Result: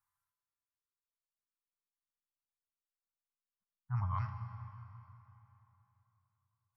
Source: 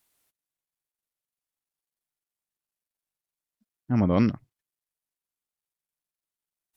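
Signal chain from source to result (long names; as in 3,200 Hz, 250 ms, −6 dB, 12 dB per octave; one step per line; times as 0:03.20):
reverb reduction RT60 1.7 s
elliptic band-stop filter 130–1,000 Hz, stop band 50 dB
high shelf with overshoot 1,800 Hz −14 dB, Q 1.5
tuned comb filter 92 Hz, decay 0.59 s, harmonics odd, mix 80%
convolution reverb RT60 3.3 s, pre-delay 20 ms, DRR 7 dB
level +6 dB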